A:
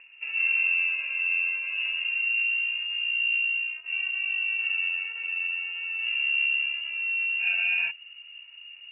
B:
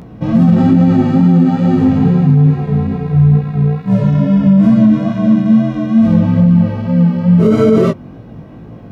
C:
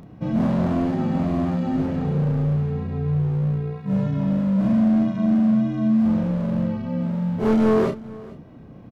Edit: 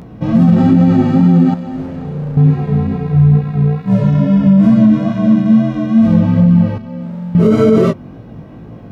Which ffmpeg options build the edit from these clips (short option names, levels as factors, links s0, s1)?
-filter_complex "[2:a]asplit=2[s0][s1];[1:a]asplit=3[s2][s3][s4];[s2]atrim=end=1.542[s5];[s0]atrim=start=1.538:end=2.372[s6];[s3]atrim=start=2.368:end=6.782[s7];[s1]atrim=start=6.778:end=7.352[s8];[s4]atrim=start=7.348[s9];[s5][s6]acrossfade=d=0.004:c1=hsin:c2=hsin[s10];[s10][s7]acrossfade=d=0.004:c1=hsin:c2=hsin[s11];[s11][s8]acrossfade=d=0.004:c1=hsin:c2=hsin[s12];[s12][s9]acrossfade=d=0.004:c1=hsin:c2=hsin"